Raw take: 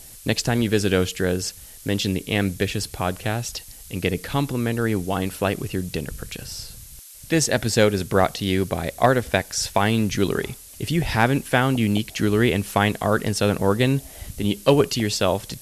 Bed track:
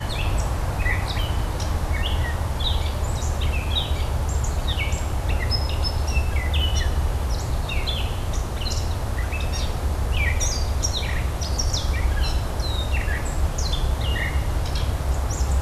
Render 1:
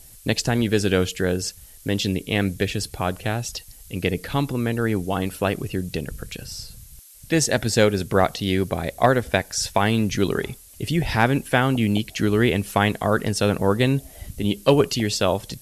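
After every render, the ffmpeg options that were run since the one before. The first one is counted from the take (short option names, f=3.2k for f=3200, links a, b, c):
-af "afftdn=nr=6:nf=-43"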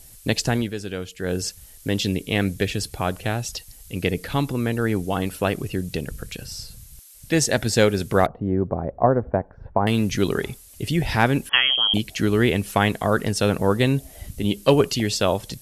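-filter_complex "[0:a]asettb=1/sr,asplit=3[a][b][c];[a]atrim=end=8.264[d];[b]atrim=start=8.26:end=9.87,asetpts=PTS-STARTPTS,afade=t=in:d=0.004:c=qsin,afade=t=out:st=1.606:d=0.004:c=qsin,lowpass=f=1.1k:w=0.5412,lowpass=f=1.1k:w=1.3066[e];[c]atrim=start=9.866[f];[d][e]acrossfade=d=0.004:c1=hsin:c2=qsin[g];[g][f]acrossfade=d=0.004:c1=qsin:c2=hsin,asettb=1/sr,asplit=3[h][i][j];[h]atrim=end=11.494[k];[i]atrim=start=11.49:end=11.94,asetpts=PTS-STARTPTS,afade=t=in:d=0.004:c=qsin,afade=t=out:st=0.446:d=0.004:c=qsin,lowpass=f=2.9k:t=q:w=0.5098,lowpass=f=2.9k:t=q:w=0.6013,lowpass=f=2.9k:t=q:w=0.9,lowpass=f=2.9k:t=q:w=2.563,afreqshift=-3400[l];[j]atrim=start=11.936[m];[k][l]acrossfade=d=0.004:c1=hsin:c2=qsin[n];[n][m]acrossfade=d=0.004:c1=qsin:c2=hsin,asplit=3[o][p][q];[o]atrim=end=0.74,asetpts=PTS-STARTPTS,afade=t=out:st=0.53:d=0.21:silence=0.298538[r];[p]atrim=start=0.74:end=1.17,asetpts=PTS-STARTPTS,volume=-10.5dB[s];[q]atrim=start=1.17,asetpts=PTS-STARTPTS,afade=t=in:d=0.21:silence=0.298538[t];[r][s][t]concat=n=3:v=0:a=1"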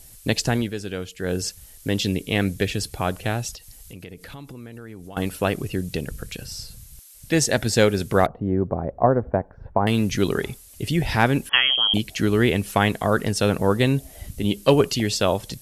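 -filter_complex "[0:a]asettb=1/sr,asplit=3[a][b][c];[a]atrim=end=3.544[d];[b]atrim=start=3.54:end=5.17,asetpts=PTS-STARTPTS,afade=t=in:d=0.004:c=qsin,afade=t=out:st=1.626:d=0.004:c=qsin,acompressor=threshold=-37dB:ratio=5:attack=3.2:release=140:knee=1:detection=peak[e];[c]atrim=start=5.166[f];[d][e]acrossfade=d=0.004:c1=hsin:c2=qsin[g];[g][f]acrossfade=d=0.004:c1=qsin:c2=hsin"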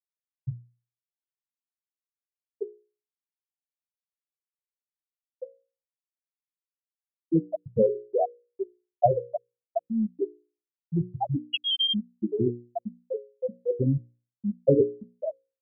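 -af "afftfilt=real='re*gte(hypot(re,im),0.891)':imag='im*gte(hypot(re,im),0.891)':win_size=1024:overlap=0.75,bandreject=f=60:t=h:w=6,bandreject=f=120:t=h:w=6,bandreject=f=180:t=h:w=6,bandreject=f=240:t=h:w=6,bandreject=f=300:t=h:w=6,bandreject=f=360:t=h:w=6,bandreject=f=420:t=h:w=6,bandreject=f=480:t=h:w=6,bandreject=f=540:t=h:w=6"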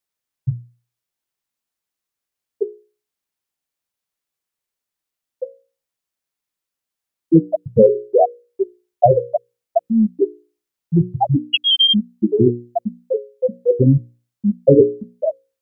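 -af "alimiter=level_in=11.5dB:limit=-1dB:release=50:level=0:latency=1"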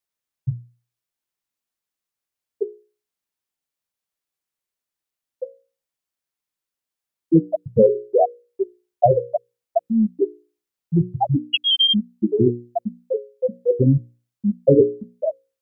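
-af "volume=-3dB"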